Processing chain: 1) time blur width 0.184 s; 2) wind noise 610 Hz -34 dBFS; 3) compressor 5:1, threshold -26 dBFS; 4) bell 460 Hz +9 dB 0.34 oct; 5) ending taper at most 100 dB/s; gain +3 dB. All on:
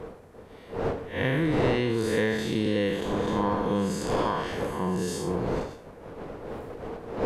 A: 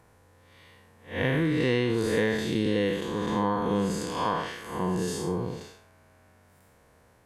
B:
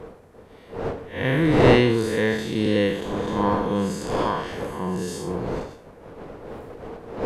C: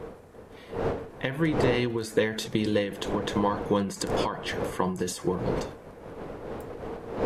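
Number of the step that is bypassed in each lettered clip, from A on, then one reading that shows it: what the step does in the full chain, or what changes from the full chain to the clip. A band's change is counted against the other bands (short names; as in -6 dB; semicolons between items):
2, momentary loudness spread change -7 LU; 3, mean gain reduction 1.5 dB; 1, 8 kHz band +3.5 dB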